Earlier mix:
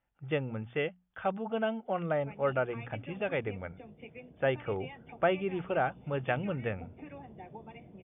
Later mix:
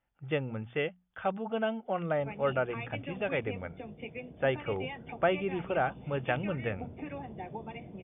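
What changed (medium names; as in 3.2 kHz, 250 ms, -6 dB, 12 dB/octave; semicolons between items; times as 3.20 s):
background +6.0 dB; master: remove distance through air 65 m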